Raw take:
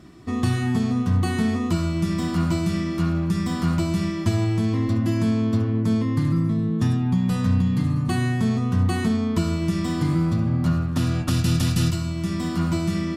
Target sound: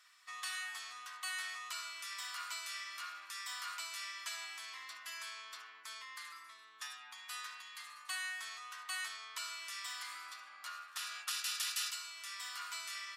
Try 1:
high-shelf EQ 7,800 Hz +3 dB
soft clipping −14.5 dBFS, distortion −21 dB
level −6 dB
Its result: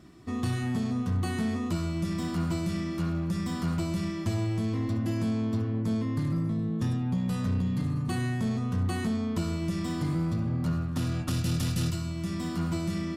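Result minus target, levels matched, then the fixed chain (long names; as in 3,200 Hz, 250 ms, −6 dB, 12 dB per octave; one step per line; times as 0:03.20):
1,000 Hz band −6.0 dB
high-pass filter 1,300 Hz 24 dB per octave
high-shelf EQ 7,800 Hz +3 dB
soft clipping −14.5 dBFS, distortion −38 dB
level −6 dB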